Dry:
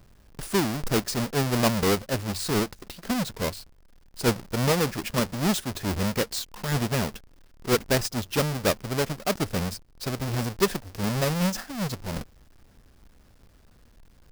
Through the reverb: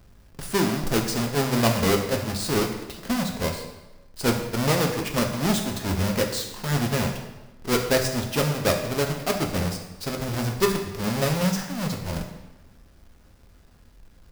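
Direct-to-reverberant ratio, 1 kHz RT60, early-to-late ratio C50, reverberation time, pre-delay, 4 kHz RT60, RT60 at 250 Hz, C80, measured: 2.5 dB, 1.1 s, 6.5 dB, 1.1 s, 5 ms, 0.90 s, 1.2 s, 8.5 dB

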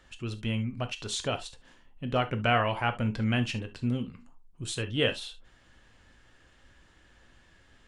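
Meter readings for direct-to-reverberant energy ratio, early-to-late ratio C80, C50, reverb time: 8.0 dB, 31.0 dB, 16.0 dB, not exponential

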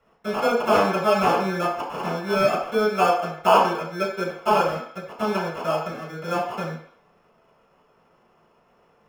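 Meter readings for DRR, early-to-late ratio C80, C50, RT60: -7.5 dB, 8.0 dB, 4.5 dB, 0.55 s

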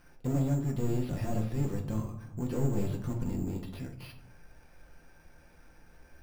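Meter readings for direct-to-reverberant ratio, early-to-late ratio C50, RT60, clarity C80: 1.0 dB, 9.0 dB, 0.80 s, 13.0 dB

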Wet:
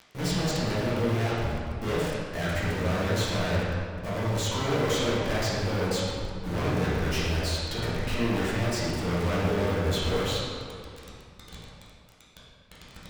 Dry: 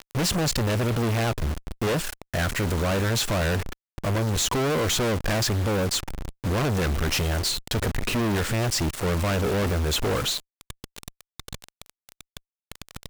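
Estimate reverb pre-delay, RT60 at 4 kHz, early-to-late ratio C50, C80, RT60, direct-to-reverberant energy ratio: 6 ms, 1.4 s, -2.5 dB, -0.5 dB, 2.2 s, -9.5 dB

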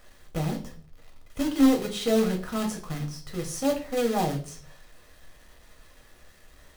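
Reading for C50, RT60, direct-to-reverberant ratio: 11.5 dB, 0.45 s, 1.5 dB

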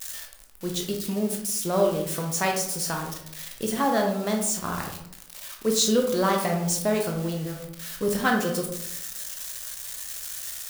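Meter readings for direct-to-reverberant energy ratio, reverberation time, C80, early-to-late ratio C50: 1.0 dB, 0.75 s, 9.0 dB, 5.5 dB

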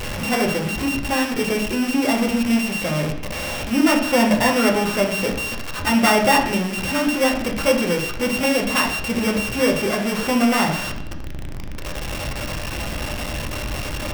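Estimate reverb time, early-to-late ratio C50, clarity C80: 0.70 s, 7.0 dB, 10.0 dB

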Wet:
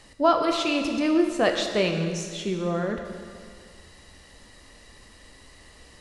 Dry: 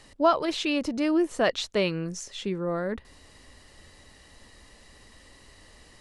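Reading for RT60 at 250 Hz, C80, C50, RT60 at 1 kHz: 1.8 s, 6.5 dB, 5.5 dB, 1.9 s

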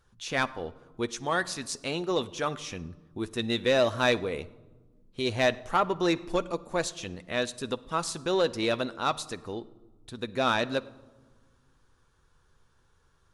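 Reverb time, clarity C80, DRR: 1.3 s, 21.0 dB, 11.5 dB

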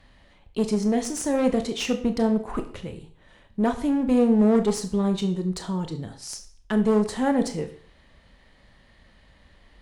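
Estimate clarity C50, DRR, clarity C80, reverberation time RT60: 12.5 dB, 7.0 dB, 15.5 dB, 0.45 s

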